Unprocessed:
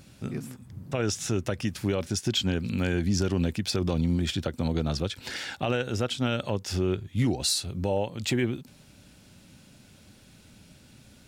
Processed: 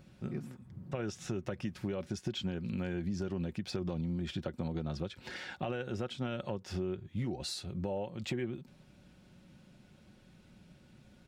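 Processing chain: bell 13000 Hz -14 dB 2.3 oct; comb 5.5 ms, depth 36%; compressor 5:1, threshold -27 dBFS, peak gain reduction 7 dB; gain -5 dB

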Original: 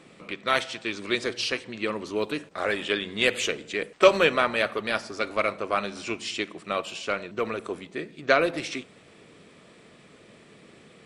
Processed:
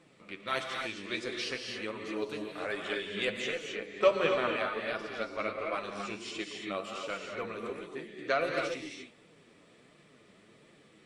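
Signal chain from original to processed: reverb, pre-delay 3 ms, DRR 1.5 dB; flange 1.4 Hz, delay 5.6 ms, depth 5.3 ms, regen +39%; 3.25–5.74 LPF 3600 Hz 6 dB/oct; gain -6 dB

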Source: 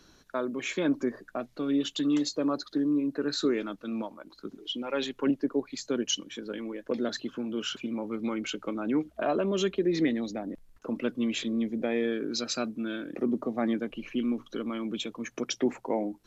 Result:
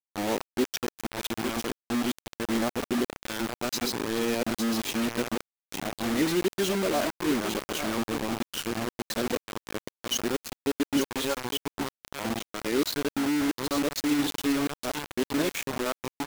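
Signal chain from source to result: whole clip reversed; echo 0.854 s -9 dB; bit-crush 5-bit

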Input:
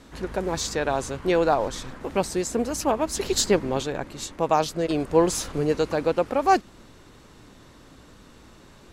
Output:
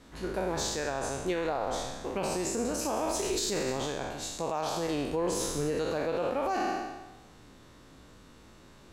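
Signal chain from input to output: spectral trails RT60 1.10 s; limiter -14.5 dBFS, peak gain reduction 10 dB; gain -7 dB

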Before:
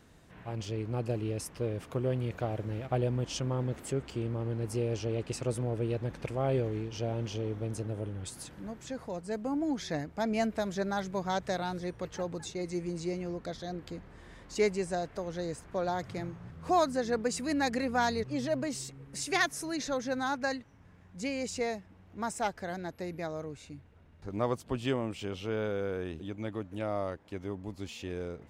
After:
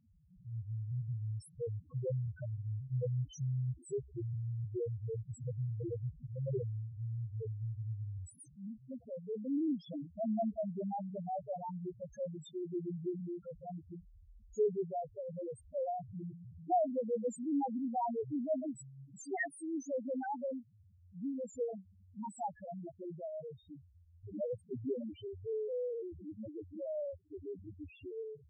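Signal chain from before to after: high shelf 11000 Hz +10 dB; loudest bins only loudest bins 1; gain +2.5 dB

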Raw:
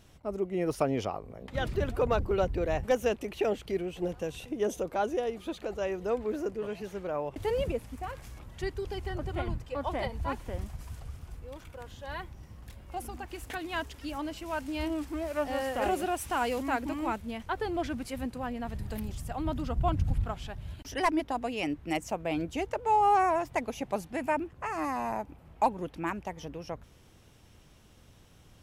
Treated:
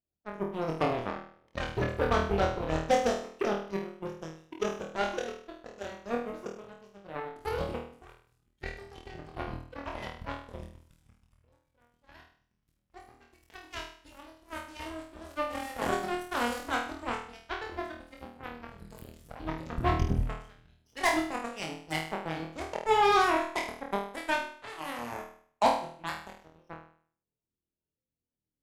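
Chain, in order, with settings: bin magnitudes rounded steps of 30 dB; added harmonics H 7 -17 dB, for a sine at -14 dBFS; flutter echo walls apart 4.3 m, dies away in 0.52 s

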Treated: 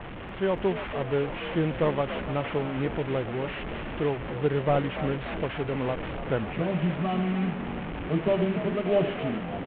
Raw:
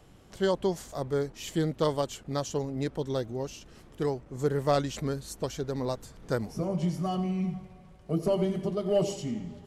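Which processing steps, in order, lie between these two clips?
delta modulation 16 kbps, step -31 dBFS; AGC gain up to 4 dB; frequency-shifting echo 0.291 s, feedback 62%, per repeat +48 Hz, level -12 dB; low-pass opened by the level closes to 650 Hz, open at -36.5 dBFS; gain -2 dB

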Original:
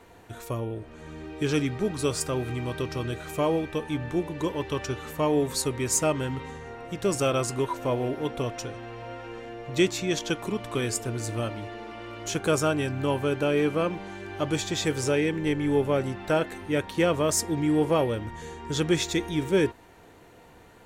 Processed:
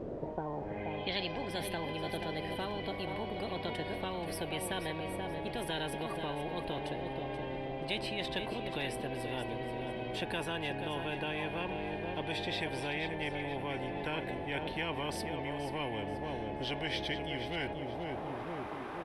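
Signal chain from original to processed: speed glide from 134% -> 85%; in parallel at -2 dB: limiter -20.5 dBFS, peak gain reduction 9 dB; on the sum: low-pass sweep 390 Hz -> 11000 Hz, 0.02–1.63; fixed phaser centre 3000 Hz, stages 4; added noise brown -43 dBFS; band-pass sweep 360 Hz -> 1100 Hz, 17.56–18.47; feedback echo 0.481 s, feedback 32%, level -11 dB; spectral compressor 10:1; gain -6.5 dB

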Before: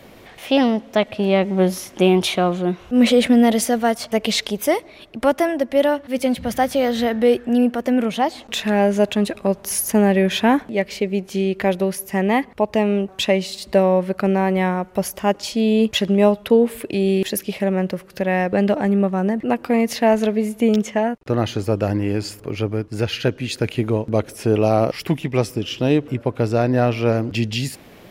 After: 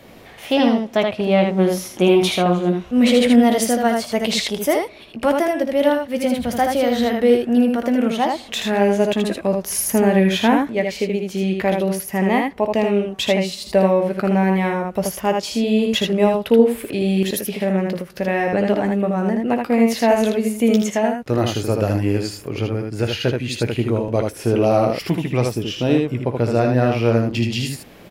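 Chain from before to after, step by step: 20.08–22.18 high shelf 4800 Hz +7.5 dB; early reflections 17 ms -11.5 dB, 57 ms -14 dB, 79 ms -4 dB; gain -1 dB

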